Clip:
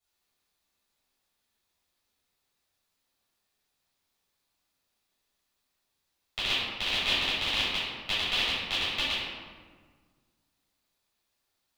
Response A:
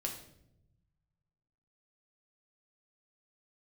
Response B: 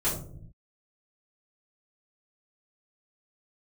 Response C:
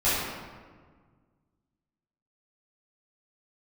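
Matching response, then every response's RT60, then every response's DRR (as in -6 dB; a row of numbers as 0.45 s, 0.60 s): C; 0.80 s, 0.60 s, 1.6 s; 0.5 dB, -13.0 dB, -13.0 dB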